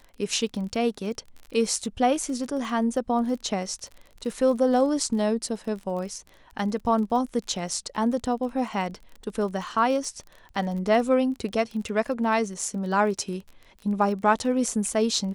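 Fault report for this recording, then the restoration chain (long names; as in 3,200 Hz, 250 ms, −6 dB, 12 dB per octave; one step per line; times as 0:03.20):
surface crackle 31 per second −34 dBFS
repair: click removal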